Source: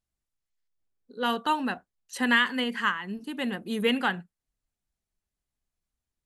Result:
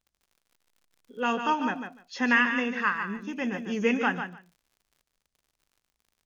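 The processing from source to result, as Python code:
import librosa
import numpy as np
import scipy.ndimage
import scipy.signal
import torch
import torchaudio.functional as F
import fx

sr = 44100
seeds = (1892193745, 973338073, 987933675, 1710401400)

y = fx.freq_compress(x, sr, knee_hz=2200.0, ratio=1.5)
y = fx.dmg_crackle(y, sr, seeds[0], per_s=64.0, level_db=-50.0)
y = fx.echo_feedback(y, sr, ms=147, feedback_pct=15, wet_db=-8)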